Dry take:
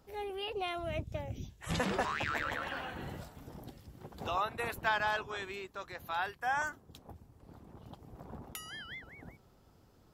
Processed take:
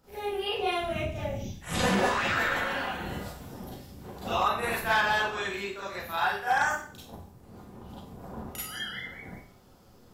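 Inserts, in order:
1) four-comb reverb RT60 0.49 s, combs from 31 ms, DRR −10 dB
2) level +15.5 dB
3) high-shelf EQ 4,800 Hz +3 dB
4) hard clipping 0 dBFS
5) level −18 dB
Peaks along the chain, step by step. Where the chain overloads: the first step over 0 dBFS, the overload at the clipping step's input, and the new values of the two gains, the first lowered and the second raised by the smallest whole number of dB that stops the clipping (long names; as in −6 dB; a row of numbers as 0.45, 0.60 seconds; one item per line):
−9.5, +6.0, +6.0, 0.0, −18.0 dBFS
step 2, 6.0 dB
step 2 +9.5 dB, step 5 −12 dB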